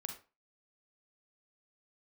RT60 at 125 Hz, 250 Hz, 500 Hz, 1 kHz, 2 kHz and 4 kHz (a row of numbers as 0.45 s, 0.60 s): 0.30 s, 0.30 s, 0.30 s, 0.35 s, 0.30 s, 0.25 s